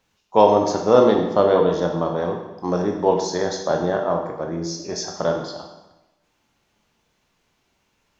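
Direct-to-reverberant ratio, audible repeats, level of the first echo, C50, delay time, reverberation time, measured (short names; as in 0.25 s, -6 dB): 2.0 dB, none, none, 5.0 dB, none, 1.0 s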